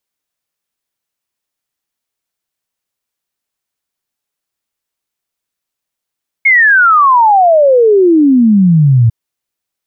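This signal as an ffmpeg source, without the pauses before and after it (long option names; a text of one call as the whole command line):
ffmpeg -f lavfi -i "aevalsrc='0.631*clip(min(t,2.65-t)/0.01,0,1)*sin(2*PI*2200*2.65/log(110/2200)*(exp(log(110/2200)*t/2.65)-1))':duration=2.65:sample_rate=44100" out.wav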